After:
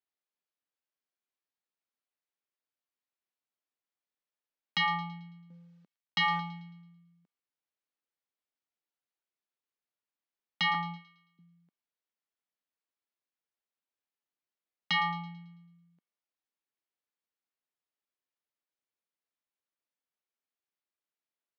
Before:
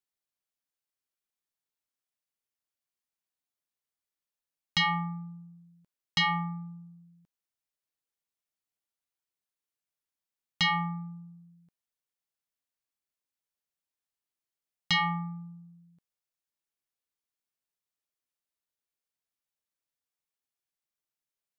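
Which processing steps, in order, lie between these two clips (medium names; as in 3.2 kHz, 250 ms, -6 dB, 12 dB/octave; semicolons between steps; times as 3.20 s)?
5.50–6.40 s: companding laws mixed up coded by mu; 10.74–11.39 s: gate -36 dBFS, range -21 dB; high-pass 200 Hz 24 dB/octave; distance through air 180 m; feedback echo behind a high-pass 110 ms, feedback 43%, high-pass 2.2 kHz, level -13 dB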